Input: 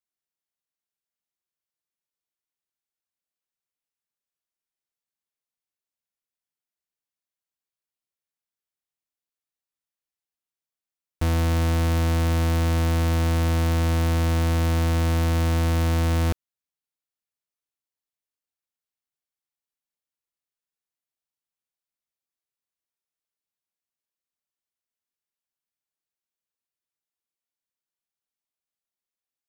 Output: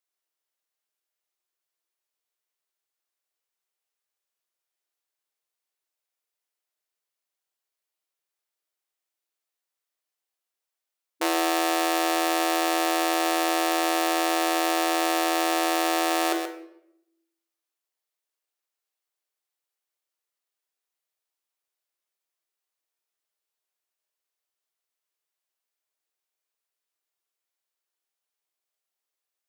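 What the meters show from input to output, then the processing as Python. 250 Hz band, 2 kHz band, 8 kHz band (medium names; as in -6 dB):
-0.5 dB, +5.5 dB, +7.0 dB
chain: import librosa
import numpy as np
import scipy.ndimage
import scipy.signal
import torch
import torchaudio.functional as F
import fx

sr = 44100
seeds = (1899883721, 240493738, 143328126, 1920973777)

p1 = x + fx.echo_single(x, sr, ms=129, db=-11.0, dry=0)
p2 = fx.leveller(p1, sr, passes=1)
p3 = fx.brickwall_highpass(p2, sr, low_hz=310.0)
p4 = fx.hum_notches(p3, sr, base_hz=50, count=10)
p5 = fx.room_shoebox(p4, sr, seeds[0], volume_m3=200.0, walls='mixed', distance_m=0.49)
y = p5 * librosa.db_to_amplitude(6.0)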